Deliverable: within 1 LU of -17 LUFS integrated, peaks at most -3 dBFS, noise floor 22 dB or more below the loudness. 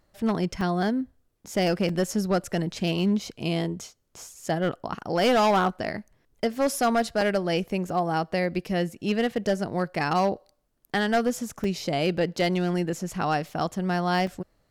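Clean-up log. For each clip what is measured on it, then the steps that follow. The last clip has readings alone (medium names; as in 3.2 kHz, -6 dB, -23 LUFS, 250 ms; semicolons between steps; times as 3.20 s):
clipped samples 1.4%; clipping level -16.5 dBFS; dropouts 7; longest dropout 3.1 ms; loudness -26.5 LUFS; peak level -16.5 dBFS; loudness target -17.0 LUFS
-> clip repair -16.5 dBFS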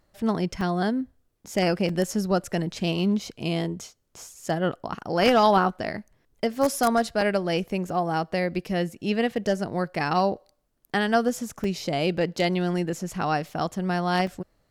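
clipped samples 0.0%; dropouts 7; longest dropout 3.1 ms
-> interpolate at 0.61/1.89/4.46/7.21/7.89/11.64/14.27 s, 3.1 ms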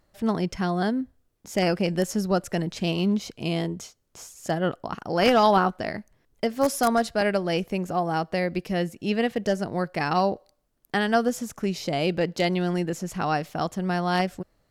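dropouts 0; loudness -25.5 LUFS; peak level -7.5 dBFS; loudness target -17.0 LUFS
-> trim +8.5 dB; peak limiter -3 dBFS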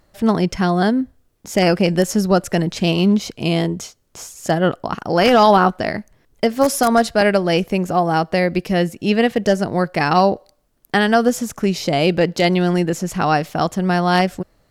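loudness -17.5 LUFS; peak level -3.0 dBFS; noise floor -61 dBFS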